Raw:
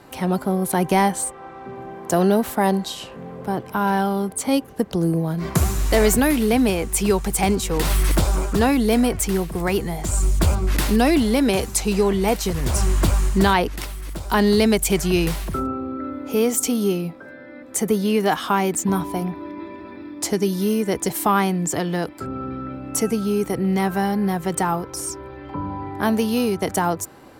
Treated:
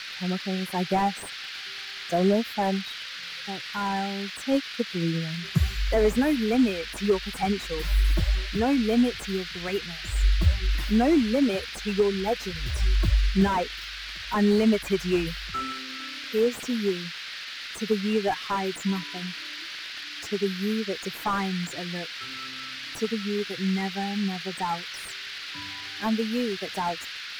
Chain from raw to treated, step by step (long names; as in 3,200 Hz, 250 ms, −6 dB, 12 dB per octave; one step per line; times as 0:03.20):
spectral dynamics exaggerated over time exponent 2
noise in a band 1,400–4,800 Hz −37 dBFS
slew-rate limiting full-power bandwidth 75 Hz